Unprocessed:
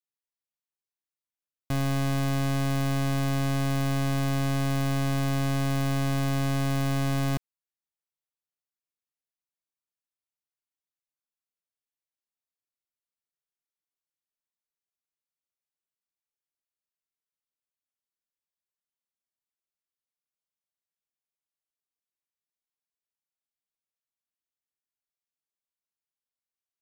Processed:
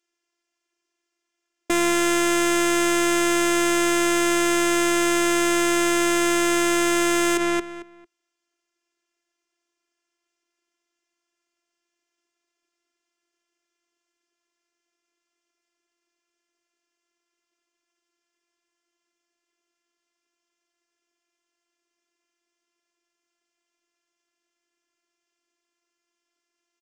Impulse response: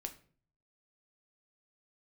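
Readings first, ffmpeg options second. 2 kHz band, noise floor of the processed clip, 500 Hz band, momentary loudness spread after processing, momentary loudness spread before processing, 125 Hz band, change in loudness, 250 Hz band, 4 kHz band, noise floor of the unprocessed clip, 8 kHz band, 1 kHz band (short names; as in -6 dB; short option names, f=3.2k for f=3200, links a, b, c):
+13.0 dB, -82 dBFS, +12.0 dB, 1 LU, 0 LU, -19.0 dB, +7.0 dB, +7.5 dB, +11.0 dB, under -85 dBFS, +16.5 dB, +10.0 dB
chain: -filter_complex "[0:a]highpass=180,equalizer=f=190:t=q:w=4:g=-6,equalizer=f=380:t=q:w=4:g=9,equalizer=f=850:t=q:w=4:g=-7,equalizer=f=4k:t=q:w=4:g=-10,lowpass=f=6.7k:w=0.5412,lowpass=f=6.7k:w=1.3066,aeval=exprs='0.106*(cos(1*acos(clip(val(0)/0.106,-1,1)))-cos(1*PI/2))+0.0422*(cos(3*acos(clip(val(0)/0.106,-1,1)))-cos(3*PI/2))+0.0211*(cos(5*acos(clip(val(0)/0.106,-1,1)))-cos(5*PI/2))':c=same,asplit=2[a][b];[b]adelay=224,lowpass=f=3.5k:p=1,volume=-9dB,asplit=2[c][d];[d]adelay=224,lowpass=f=3.5k:p=1,volume=0.21,asplit=2[e][f];[f]adelay=224,lowpass=f=3.5k:p=1,volume=0.21[g];[c][e][g]amix=inputs=3:normalize=0[h];[a][h]amix=inputs=2:normalize=0,afftfilt=real='hypot(re,im)*cos(PI*b)':imag='0':win_size=512:overlap=0.75,alimiter=level_in=28dB:limit=-1dB:release=50:level=0:latency=1,volume=-3.5dB"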